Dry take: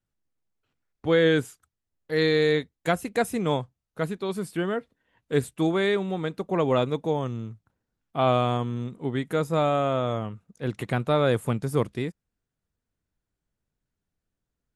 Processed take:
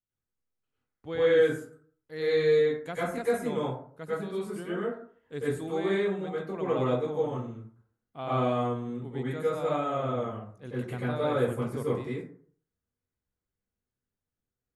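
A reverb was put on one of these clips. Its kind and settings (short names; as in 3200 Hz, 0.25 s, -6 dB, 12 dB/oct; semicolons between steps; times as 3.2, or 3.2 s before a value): plate-style reverb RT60 0.52 s, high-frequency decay 0.45×, pre-delay 85 ms, DRR -8.5 dB; gain -14.5 dB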